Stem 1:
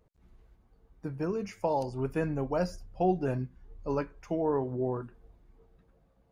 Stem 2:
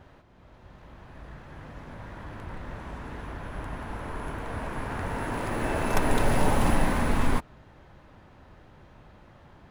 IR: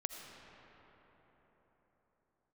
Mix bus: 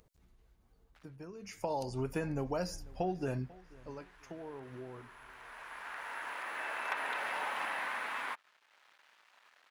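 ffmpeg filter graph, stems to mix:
-filter_complex "[0:a]highshelf=f=2.4k:g=9.5,acompressor=threshold=-31dB:ratio=6,volume=-0.5dB,afade=t=in:st=1.41:d=0.3:silence=0.237137,afade=t=out:st=3.38:d=0.24:silence=0.281838,asplit=3[a][b][c];[b]volume=-22.5dB[d];[1:a]aeval=exprs='sgn(val(0))*max(abs(val(0))-0.00237,0)':c=same,acrossover=split=3100[e][f];[f]acompressor=threshold=-58dB:ratio=4:attack=1:release=60[g];[e][g]amix=inputs=2:normalize=0,highpass=1.4k,adelay=950,volume=-0.5dB[h];[c]apad=whole_len=469983[i];[h][i]sidechaincompress=threshold=-53dB:ratio=6:attack=16:release=1290[j];[d]aecho=0:1:493|986|1479|1972:1|0.31|0.0961|0.0298[k];[a][j][k]amix=inputs=3:normalize=0,acompressor=mode=upward:threshold=-57dB:ratio=2.5"

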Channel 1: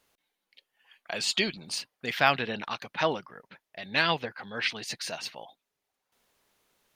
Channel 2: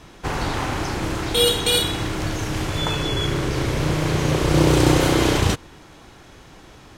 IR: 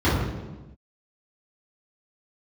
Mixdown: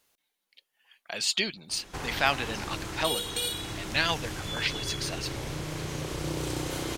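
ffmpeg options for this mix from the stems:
-filter_complex "[0:a]volume=-3.5dB[a];[1:a]acompressor=threshold=-32dB:ratio=2,adelay=1700,volume=-6.5dB[b];[a][b]amix=inputs=2:normalize=0,highshelf=f=3.5k:g=7.5"

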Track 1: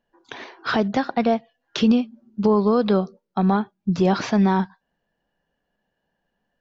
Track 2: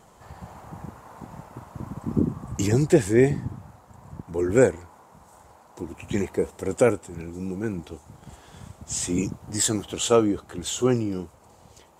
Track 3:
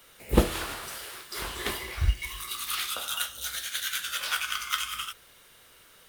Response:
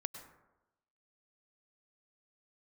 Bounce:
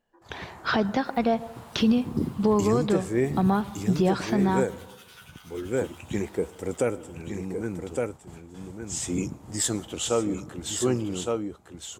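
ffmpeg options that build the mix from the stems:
-filter_complex "[0:a]volume=-4.5dB,asplit=2[a][b];[b]volume=-6.5dB[c];[1:a]agate=range=-29dB:threshold=-46dB:ratio=16:detection=peak,volume=-5dB,asplit=3[d][e][f];[e]volume=-10.5dB[g];[f]volume=-4.5dB[h];[2:a]acompressor=threshold=-42dB:ratio=3,asplit=2[i][j];[j]adelay=10.5,afreqshift=1[k];[i][k]amix=inputs=2:normalize=1,adelay=850,volume=-7dB,asplit=2[l][m];[m]volume=-7.5dB[n];[3:a]atrim=start_sample=2205[o];[c][g]amix=inputs=2:normalize=0[p];[p][o]afir=irnorm=-1:irlink=0[q];[h][n]amix=inputs=2:normalize=0,aecho=0:1:1162:1[r];[a][d][l][q][r]amix=inputs=5:normalize=0,alimiter=limit=-13dB:level=0:latency=1:release=405"

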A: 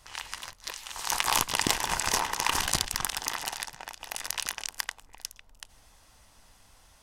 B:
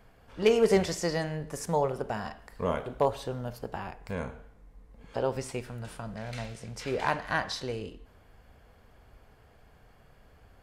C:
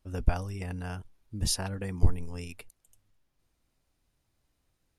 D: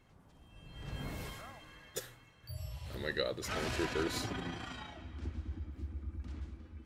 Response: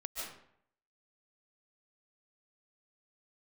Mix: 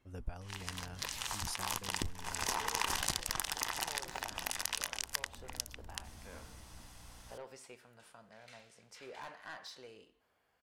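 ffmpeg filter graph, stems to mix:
-filter_complex "[0:a]aeval=exprs='val(0)+0.000891*(sin(2*PI*60*n/s)+sin(2*PI*2*60*n/s)/2+sin(2*PI*3*60*n/s)/3+sin(2*PI*4*60*n/s)/4+sin(2*PI*5*60*n/s)/5)':c=same,adelay=350,volume=2.5dB[a];[1:a]highpass=f=710:p=1,asoftclip=type=tanh:threshold=-28dB,adelay=2150,volume=-12dB[b];[2:a]volume=-11.5dB,asplit=2[c][d];[3:a]aeval=exprs='(tanh(178*val(0)+0.4)-tanh(0.4))/178':c=same,volume=-6.5dB[e];[d]apad=whole_len=325319[f];[a][f]sidechaincompress=threshold=-50dB:ratio=16:attack=11:release=264[g];[g][b][c][e]amix=inputs=4:normalize=0,acompressor=threshold=-35dB:ratio=2.5"

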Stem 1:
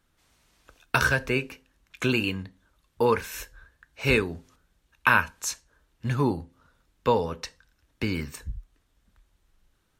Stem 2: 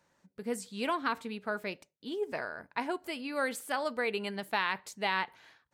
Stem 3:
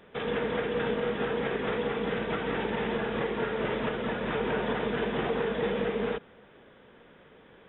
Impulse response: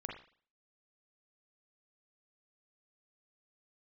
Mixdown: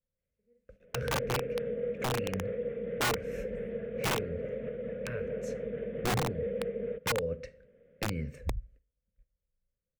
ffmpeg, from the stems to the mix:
-filter_complex "[0:a]agate=range=-20dB:threshold=-56dB:ratio=16:detection=peak,adynamicequalizer=threshold=0.00398:dfrequency=120:dqfactor=8:tfrequency=120:tqfactor=8:attack=5:release=100:ratio=0.375:range=4:mode=boostabove:tftype=bell,acompressor=threshold=-28dB:ratio=12,volume=0.5dB,asplit=3[a][b][c];[b]volume=-12dB[d];[1:a]volume=-17.5dB,asplit=2[e][f];[f]volume=-19dB[g];[2:a]acontrast=68,adelay=800,volume=-14dB,asplit=2[h][i];[i]volume=-18.5dB[j];[c]apad=whole_len=253034[k];[e][k]sidechaingate=range=-33dB:threshold=-54dB:ratio=16:detection=peak[l];[3:a]atrim=start_sample=2205[m];[d][g][j]amix=inputs=3:normalize=0[n];[n][m]afir=irnorm=-1:irlink=0[o];[a][l][h][o]amix=inputs=4:normalize=0,firequalizer=gain_entry='entry(200,0);entry(330,-13);entry(520,9);entry(840,-30);entry(1400,-15);entry(2100,-8);entry(3500,-23);entry(6400,-22);entry(14000,-28)':delay=0.05:min_phase=1,aeval=exprs='(mod(15.8*val(0)+1,2)-1)/15.8':c=same"

